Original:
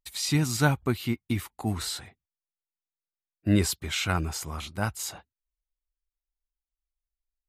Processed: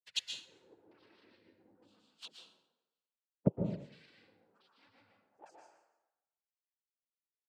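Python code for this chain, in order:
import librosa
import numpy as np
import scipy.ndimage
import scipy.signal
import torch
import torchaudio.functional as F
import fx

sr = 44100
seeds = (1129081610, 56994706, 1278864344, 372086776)

y = fx.dereverb_blind(x, sr, rt60_s=0.77)
y = fx.hum_notches(y, sr, base_hz=50, count=3)
y = fx.noise_reduce_blind(y, sr, reduce_db=23)
y = y + 0.82 * np.pad(y, (int(6.2 * sr / 1000.0), 0))[:len(y)]
y = fx.echo_thinned(y, sr, ms=150, feedback_pct=26, hz=250.0, wet_db=-3)
y = fx.fold_sine(y, sr, drive_db=17, ceiling_db=-10.0)
y = fx.gate_flip(y, sr, shuts_db=-14.0, range_db=-40)
y = fx.filter_lfo_lowpass(y, sr, shape='square', hz=1.1, low_hz=510.0, high_hz=2800.0, q=2.2)
y = fx.noise_vocoder(y, sr, seeds[0], bands=8)
y = fx.env_flanger(y, sr, rest_ms=6.4, full_db=-35.5)
y = fx.rev_plate(y, sr, seeds[1], rt60_s=0.95, hf_ratio=0.65, predelay_ms=105, drr_db=0.0)
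y = fx.upward_expand(y, sr, threshold_db=-51.0, expansion=1.5)
y = F.gain(torch.from_numpy(y), 1.0).numpy()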